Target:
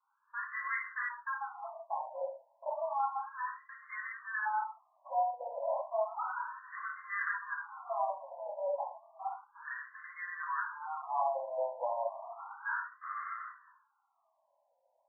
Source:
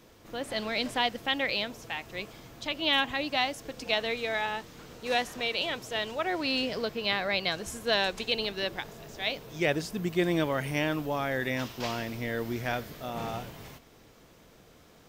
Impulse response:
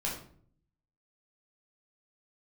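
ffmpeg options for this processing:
-filter_complex "[0:a]asettb=1/sr,asplit=3[link_01][link_02][link_03];[link_01]atrim=end=3.184[link_04];[link_02]atrim=start=3.18:end=5.69,asetpts=PTS-STARTPTS,afade=type=in:duration=0.004:curve=qsin,afade=type=out:start_time=2.506:duration=0.004:curve=qsin,acrossover=split=580[link_05][link_06];[link_05]aeval=exprs='val(0)*(1-0.5/2+0.5/2*cos(2*PI*5.3*n/s))':channel_layout=same[link_07];[link_06]aeval=exprs='val(0)*(1-0.5/2-0.5/2*cos(2*PI*5.3*n/s))':channel_layout=same[link_08];[link_07][link_08]amix=inputs=2:normalize=0[link_09];[link_03]atrim=start=5.686[link_10];[link_04][link_09]acrossfade=duration=0.004:curve1=hsin:curve2=qsin[link_11];[link_11][link_10]acrossfade=duration=0.004:curve1=qsin:curve2=hsin,acompressor=threshold=-37dB:ratio=4,agate=range=-23dB:threshold=-42dB:ratio=16:detection=peak[link_12];[1:a]atrim=start_sample=2205,afade=type=out:start_time=0.24:duration=0.01,atrim=end_sample=11025[link_13];[link_12][link_13]afir=irnorm=-1:irlink=0,afftfilt=real='re*between(b*sr/1024,720*pow(1500/720,0.5+0.5*sin(2*PI*0.32*pts/sr))/1.41,720*pow(1500/720,0.5+0.5*sin(2*PI*0.32*pts/sr))*1.41)':imag='im*between(b*sr/1024,720*pow(1500/720,0.5+0.5*sin(2*PI*0.32*pts/sr))/1.41,720*pow(1500/720,0.5+0.5*sin(2*PI*0.32*pts/sr))*1.41)':win_size=1024:overlap=0.75,volume=7.5dB"

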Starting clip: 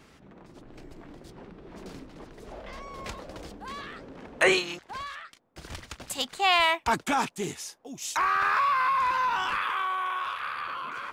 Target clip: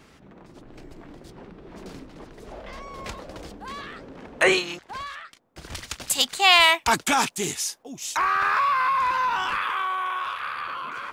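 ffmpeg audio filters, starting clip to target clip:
ffmpeg -i in.wav -filter_complex "[0:a]asettb=1/sr,asplit=3[link_01][link_02][link_03];[link_01]atrim=end=5.754[link_04];[link_02]atrim=start=5.75:end=7.83,asetpts=PTS-STARTPTS,afade=type=in:duration=0.004:curve=qsin,afade=type=out:start_time=2.076:duration=0.004:curve=qsin,highshelf=frequency=2400:gain=10[link_05];[link_03]atrim=start=7.826[link_06];[link_04][link_05]acrossfade=duration=0.004:curve1=hsin:curve2=qsin[link_07];[link_07][link_06]acrossfade=duration=0.004:curve1=qsin:curve2=hsin,volume=2.5dB" out.wav

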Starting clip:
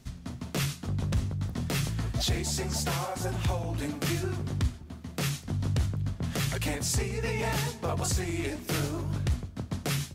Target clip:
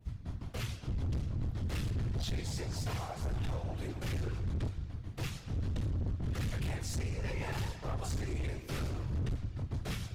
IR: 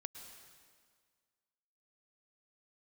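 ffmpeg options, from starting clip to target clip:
-filter_complex "[0:a]flanger=delay=18.5:depth=5.4:speed=1.5,asplit=2[link_01][link_02];[1:a]atrim=start_sample=2205,lowpass=4500[link_03];[link_02][link_03]afir=irnorm=-1:irlink=0,volume=4dB[link_04];[link_01][link_04]amix=inputs=2:normalize=0,adynamicequalizer=threshold=0.00282:dfrequency=5800:dqfactor=0.78:tfrequency=5800:tqfactor=0.78:attack=5:release=100:ratio=0.375:range=1.5:mode=boostabove:tftype=bell,afftfilt=real='hypot(re,im)*cos(2*PI*random(0))':imag='hypot(re,im)*sin(2*PI*random(1))':win_size=512:overlap=0.75,lowshelf=frequency=140:width_type=q:width=1.5:gain=8.5,asoftclip=type=hard:threshold=-26dB,volume=-5dB"

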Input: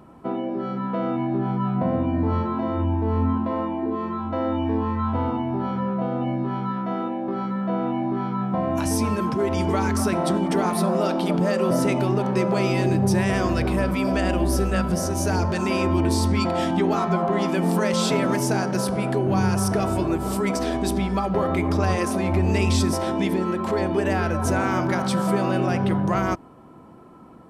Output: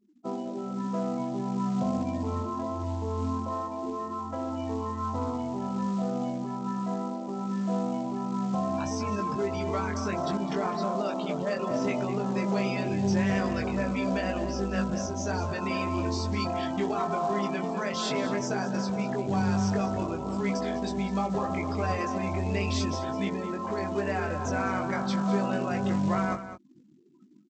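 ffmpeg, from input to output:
ffmpeg -i in.wav -filter_complex "[0:a]highpass=frequency=120:poles=1,afftfilt=real='re*gte(hypot(re,im),0.0251)':imag='im*gte(hypot(re,im),0.0251)':win_size=1024:overlap=0.75,adynamicequalizer=threshold=0.00891:dfrequency=360:dqfactor=5.5:tfrequency=360:tqfactor=5.5:attack=5:release=100:ratio=0.375:range=2.5:mode=cutabove:tftype=bell,asplit=2[link_01][link_02];[link_02]adelay=20,volume=-4dB[link_03];[link_01][link_03]amix=inputs=2:normalize=0,asplit=2[link_04][link_05];[link_05]adelay=204.1,volume=-11dB,highshelf=frequency=4000:gain=-4.59[link_06];[link_04][link_06]amix=inputs=2:normalize=0,aresample=16000,acrusher=bits=6:mode=log:mix=0:aa=0.000001,aresample=44100,volume=-7dB" out.wav

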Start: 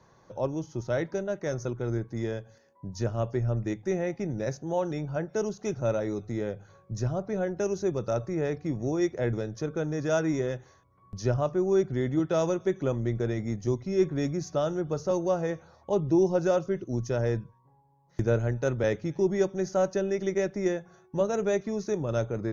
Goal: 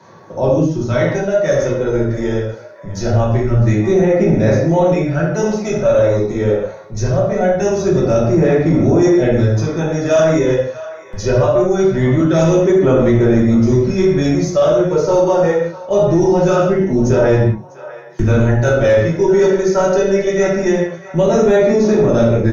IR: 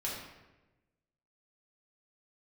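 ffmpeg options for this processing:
-filter_complex "[0:a]aphaser=in_gain=1:out_gain=1:delay=2.2:decay=0.45:speed=0.23:type=sinusoidal[link_01];[1:a]atrim=start_sample=2205,afade=type=out:start_time=0.25:duration=0.01,atrim=end_sample=11466[link_02];[link_01][link_02]afir=irnorm=-1:irlink=0,apsyclip=18dB,acrossover=split=110|610[link_03][link_04][link_05];[link_03]aeval=exprs='sgn(val(0))*max(abs(val(0))-0.0178,0)':channel_layout=same[link_06];[link_05]asplit=2[link_07][link_08];[link_08]adelay=650,lowpass=frequency=1600:poles=1,volume=-10.5dB,asplit=2[link_09][link_10];[link_10]adelay=650,lowpass=frequency=1600:poles=1,volume=0.48,asplit=2[link_11][link_12];[link_12]adelay=650,lowpass=frequency=1600:poles=1,volume=0.48,asplit=2[link_13][link_14];[link_14]adelay=650,lowpass=frequency=1600:poles=1,volume=0.48,asplit=2[link_15][link_16];[link_16]adelay=650,lowpass=frequency=1600:poles=1,volume=0.48[link_17];[link_07][link_09][link_11][link_13][link_15][link_17]amix=inputs=6:normalize=0[link_18];[link_06][link_04][link_18]amix=inputs=3:normalize=0,volume=-6.5dB"

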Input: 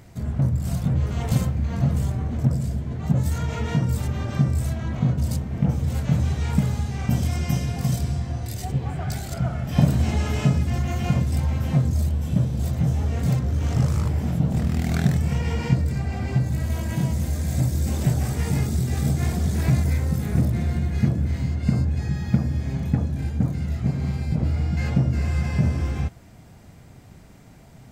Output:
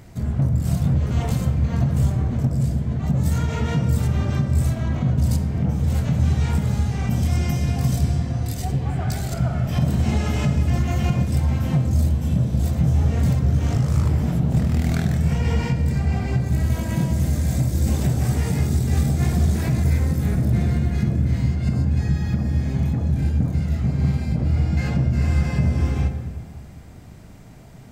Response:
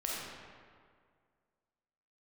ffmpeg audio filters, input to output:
-filter_complex "[0:a]alimiter=limit=-14.5dB:level=0:latency=1:release=157,asplit=2[link_01][link_02];[1:a]atrim=start_sample=2205,lowshelf=frequency=420:gain=6.5[link_03];[link_02][link_03]afir=irnorm=-1:irlink=0,volume=-10.5dB[link_04];[link_01][link_04]amix=inputs=2:normalize=0"

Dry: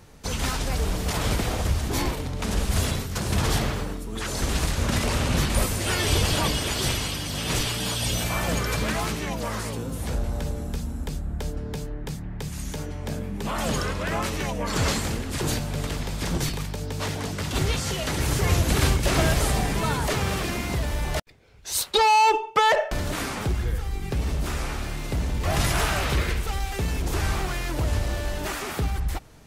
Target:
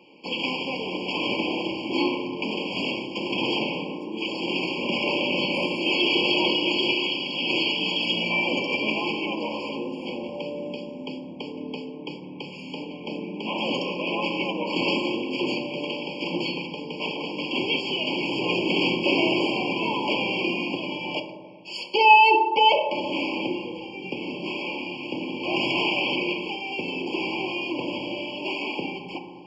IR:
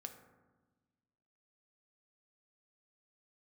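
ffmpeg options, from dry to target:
-filter_complex "[0:a]highpass=frequency=250:width=0.5412,highpass=frequency=250:width=1.3066,equalizer=frequency=290:width_type=q:width=4:gain=3,equalizer=frequency=440:width_type=q:width=4:gain=-4,equalizer=frequency=680:width_type=q:width=4:gain=-9,equalizer=frequency=1100:width_type=q:width=4:gain=-6,equalizer=frequency=2500:width_type=q:width=4:gain=5,equalizer=frequency=3600:width_type=q:width=4:gain=10,lowpass=frequency=4100:width=0.5412,lowpass=frequency=4100:width=1.3066[link_01];[1:a]atrim=start_sample=2205,asetrate=30870,aresample=44100[link_02];[link_01][link_02]afir=irnorm=-1:irlink=0,afftfilt=real='re*eq(mod(floor(b*sr/1024/1100),2),0)':imag='im*eq(mod(floor(b*sr/1024/1100),2),0)':win_size=1024:overlap=0.75,volume=7.5dB"

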